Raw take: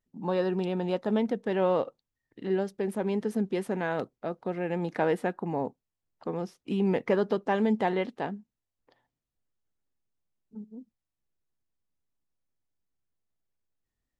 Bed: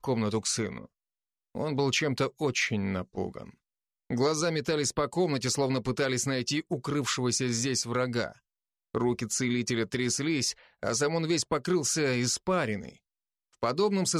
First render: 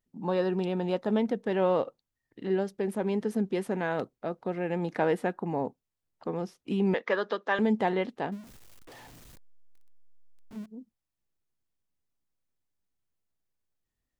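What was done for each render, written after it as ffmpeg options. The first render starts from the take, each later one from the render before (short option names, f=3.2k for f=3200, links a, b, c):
-filter_complex "[0:a]asettb=1/sr,asplit=3[a][b][c];[a]atrim=end=6.944[d];[b]atrim=start=6.94:end=7.59,asetpts=PTS-STARTPTS,afade=t=in:d=0.004:c=qsin,afade=t=out:st=0.646:d=0.004:c=qsin,highpass=f=270:w=0.5412,highpass=f=270:w=1.3066,equalizer=f=270:t=q:w=4:g=-10,equalizer=f=390:t=q:w=4:g=-5,equalizer=f=770:t=q:w=4:g=-4,equalizer=f=1.2k:t=q:w=4:g=5,equalizer=f=1.7k:t=q:w=4:g=7,equalizer=f=3.6k:t=q:w=4:g=8,lowpass=f=6.8k:w=0.5412,lowpass=f=6.8k:w=1.3066[e];[c]atrim=start=7.586[f];[d][e]acrossfade=d=0.004:c1=hsin:c2=qsin[g];[g][f]acrossfade=d=0.004:c1=qsin:c2=hsin,asettb=1/sr,asplit=3[h][i][j];[h]atrim=end=8.324[k];[i]atrim=start=8.32:end=10.66,asetpts=PTS-STARTPTS,afade=t=in:d=0.004:c=qsin,afade=t=out:st=2.336:d=0.004:c=qsin,aeval=exprs='val(0)+0.5*0.00631*sgn(val(0))':c=same[l];[j]atrim=start=10.656[m];[k][l]acrossfade=d=0.004:c1=hsin:c2=qsin[n];[n][m]acrossfade=d=0.004:c1=qsin:c2=hsin"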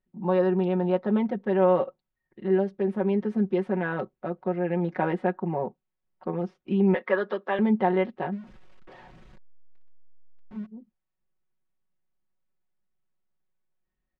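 -af "lowpass=2.3k,aecho=1:1:5.4:0.84"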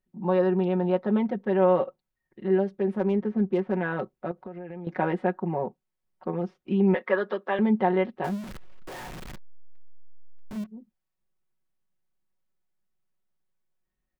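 -filter_complex "[0:a]asettb=1/sr,asplit=3[a][b][c];[a]atrim=end=2.994[d];[b]atrim=start=2.99:end=3.76,asetpts=PTS-STARTPTS,afade=t=in:d=0.004:c=qsin,afade=t=out:st=0.766:d=0.004:c=qsin,adynamicsmooth=sensitivity=5:basefreq=2.5k[e];[c]atrim=start=3.756[f];[d][e]acrossfade=d=0.004:c1=hsin:c2=qsin[g];[g][f]acrossfade=d=0.004:c1=qsin:c2=hsin,asettb=1/sr,asplit=3[h][i][j];[h]atrim=end=4.314[k];[i]atrim=start=4.31:end=4.87,asetpts=PTS-STARTPTS,afade=t=in:d=0.004:c=qsin,afade=t=out:st=0.556:d=0.004:c=qsin,acompressor=threshold=-35dB:ratio=8:attack=3.2:release=140:knee=1:detection=peak[l];[j]atrim=start=4.866[m];[k][l]acrossfade=d=0.004:c1=hsin:c2=qsin[n];[n][m]acrossfade=d=0.004:c1=qsin:c2=hsin,asettb=1/sr,asplit=3[o][p][q];[o]atrim=end=8.244[r];[p]atrim=start=8.24:end=10.64,asetpts=PTS-STARTPTS,afade=t=in:d=0.004:c=qsin,afade=t=out:st=2.396:d=0.004:c=qsin,aeval=exprs='val(0)+0.5*0.0168*sgn(val(0))':c=same[s];[q]atrim=start=10.636[t];[r][s]acrossfade=d=0.004:c1=hsin:c2=qsin[u];[u][t]acrossfade=d=0.004:c1=qsin:c2=hsin"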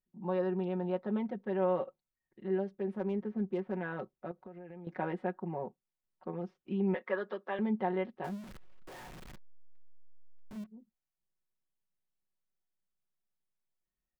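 -af "volume=-9.5dB"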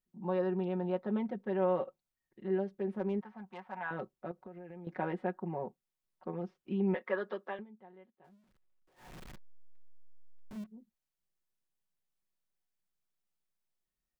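-filter_complex "[0:a]asettb=1/sr,asplit=3[a][b][c];[a]atrim=end=3.214[d];[b]atrim=start=3.21:end=3.91,asetpts=PTS-STARTPTS,afade=t=in:d=0.004:c=qsin,afade=t=out:st=0.696:d=0.004:c=qsin,lowshelf=f=590:t=q:w=3:g=-12.5[e];[c]atrim=start=3.906[f];[d][e]acrossfade=d=0.004:c1=hsin:c2=qsin[g];[g][f]acrossfade=d=0.004:c1=qsin:c2=hsin,asplit=3[h][i][j];[h]atrim=end=7.65,asetpts=PTS-STARTPTS,afade=t=out:st=7.45:d=0.2:silence=0.0668344[k];[i]atrim=start=7.65:end=8.96,asetpts=PTS-STARTPTS,volume=-23.5dB[l];[j]atrim=start=8.96,asetpts=PTS-STARTPTS,afade=t=in:d=0.2:silence=0.0668344[m];[k][l][m]concat=n=3:v=0:a=1"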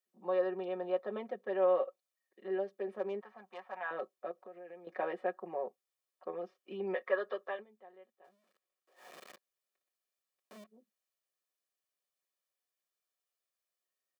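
-af "highpass=f=300:w=0.5412,highpass=f=300:w=1.3066,aecho=1:1:1.7:0.51"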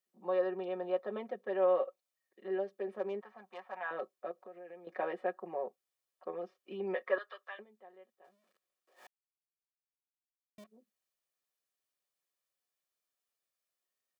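-filter_complex "[0:a]asettb=1/sr,asplit=3[a][b][c];[a]atrim=end=7.184[d];[b]atrim=start=7.18:end=7.59,asetpts=PTS-STARTPTS,afade=t=in:d=0.004:c=qsin,afade=t=out:st=0.406:d=0.004:c=qsin,highpass=1.3k[e];[c]atrim=start=7.586[f];[d][e]acrossfade=d=0.004:c1=hsin:c2=qsin[g];[g][f]acrossfade=d=0.004:c1=qsin:c2=hsin,asplit=3[h][i][j];[h]atrim=end=9.07,asetpts=PTS-STARTPTS,afade=t=out:st=9.066:d=0.004:c=hsin[k];[i]atrim=start=9.07:end=10.58,asetpts=PTS-STARTPTS,volume=0[l];[j]atrim=start=10.58,asetpts=PTS-STARTPTS,afade=t=in:d=0.004:c=hsin[m];[k][l][m]concat=n=3:v=0:a=1"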